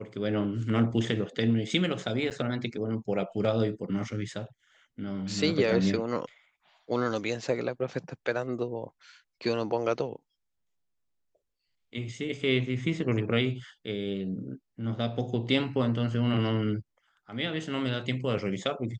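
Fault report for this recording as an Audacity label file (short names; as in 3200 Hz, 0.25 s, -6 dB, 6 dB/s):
2.300000	2.310000	gap 8.6 ms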